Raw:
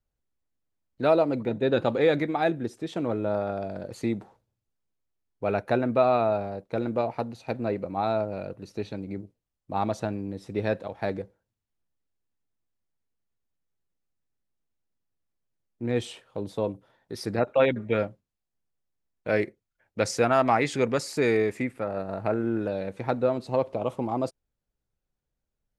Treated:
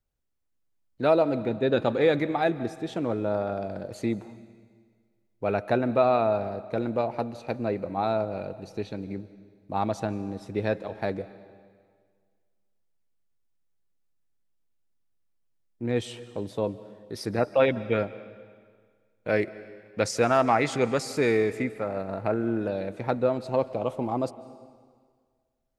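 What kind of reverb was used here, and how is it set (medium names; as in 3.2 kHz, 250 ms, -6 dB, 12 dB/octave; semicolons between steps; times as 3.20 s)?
algorithmic reverb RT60 1.8 s, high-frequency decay 0.95×, pre-delay 110 ms, DRR 16 dB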